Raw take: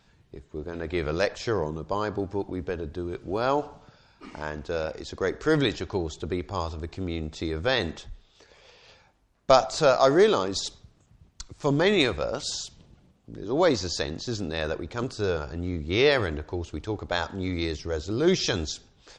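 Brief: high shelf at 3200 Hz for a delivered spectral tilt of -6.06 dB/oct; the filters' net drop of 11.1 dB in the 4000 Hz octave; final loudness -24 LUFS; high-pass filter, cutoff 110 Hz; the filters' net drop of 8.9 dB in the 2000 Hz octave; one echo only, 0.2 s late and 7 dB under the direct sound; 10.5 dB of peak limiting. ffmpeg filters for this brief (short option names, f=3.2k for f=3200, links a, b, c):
-af "highpass=110,equalizer=f=2k:t=o:g=-8.5,highshelf=f=3.2k:g=-5,equalizer=f=4k:t=o:g=-7.5,alimiter=limit=-17.5dB:level=0:latency=1,aecho=1:1:200:0.447,volume=6.5dB"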